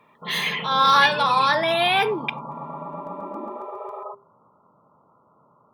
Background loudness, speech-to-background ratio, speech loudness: −34.5 LKFS, 15.0 dB, −19.5 LKFS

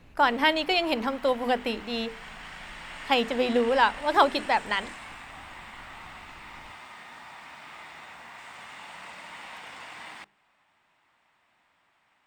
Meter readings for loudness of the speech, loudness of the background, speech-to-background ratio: −25.5 LKFS, −42.0 LKFS, 16.5 dB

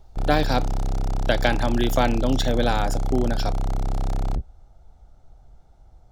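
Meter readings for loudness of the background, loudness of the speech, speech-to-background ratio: −28.5 LKFS, −24.5 LKFS, 4.0 dB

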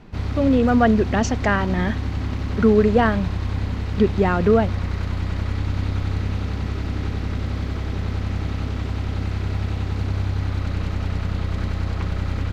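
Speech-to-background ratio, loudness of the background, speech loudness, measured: 6.0 dB, −26.0 LKFS, −20.0 LKFS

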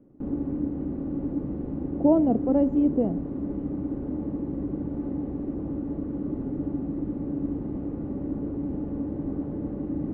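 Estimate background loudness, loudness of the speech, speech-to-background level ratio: −31.5 LKFS, −23.0 LKFS, 8.5 dB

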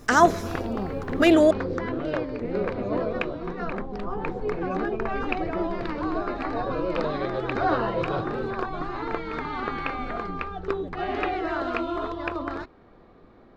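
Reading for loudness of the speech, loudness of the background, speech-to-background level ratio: −19.5 LKFS, −29.0 LKFS, 9.5 dB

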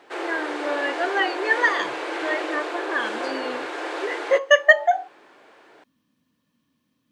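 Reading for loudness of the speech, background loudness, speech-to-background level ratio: −22.5 LKFS, −29.5 LKFS, 7.0 dB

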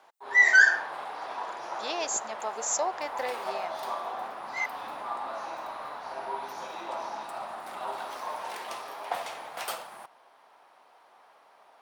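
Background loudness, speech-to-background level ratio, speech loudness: −37.0 LKFS, 12.5 dB, −24.5 LKFS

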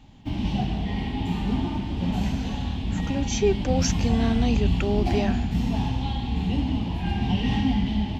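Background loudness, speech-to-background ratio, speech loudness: −26.5 LKFS, −0.5 dB, −27.0 LKFS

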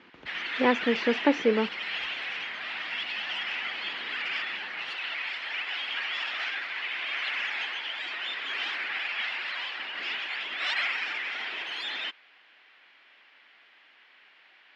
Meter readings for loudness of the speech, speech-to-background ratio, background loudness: −26.5 LKFS, 4.5 dB, −31.0 LKFS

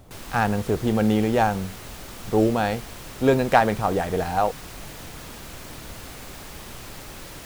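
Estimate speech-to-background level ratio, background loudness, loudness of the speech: 16.0 dB, −39.0 LKFS, −23.0 LKFS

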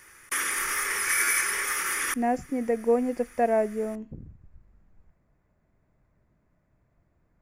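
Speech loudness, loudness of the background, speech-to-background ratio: −27.5 LKFS, −25.5 LKFS, −2.0 dB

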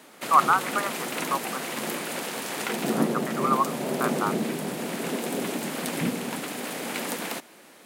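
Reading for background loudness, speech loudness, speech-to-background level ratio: −29.5 LKFS, −27.0 LKFS, 2.5 dB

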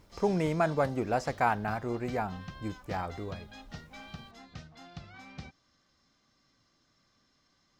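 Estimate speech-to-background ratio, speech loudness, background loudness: 16.5 dB, −32.0 LKFS, −48.5 LKFS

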